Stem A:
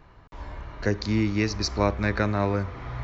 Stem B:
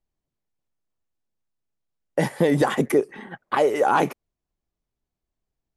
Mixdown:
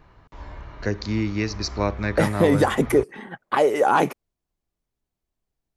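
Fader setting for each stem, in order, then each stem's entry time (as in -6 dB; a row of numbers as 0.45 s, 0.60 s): -0.5 dB, +1.0 dB; 0.00 s, 0.00 s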